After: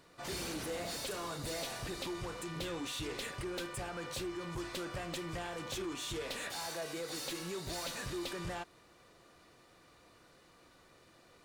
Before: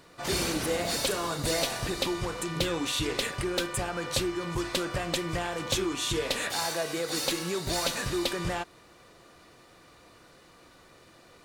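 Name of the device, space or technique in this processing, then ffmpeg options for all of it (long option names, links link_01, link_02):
saturation between pre-emphasis and de-emphasis: -af "highshelf=frequency=5900:gain=8,asoftclip=type=tanh:threshold=-26.5dB,highshelf=frequency=5900:gain=-8,volume=-7dB"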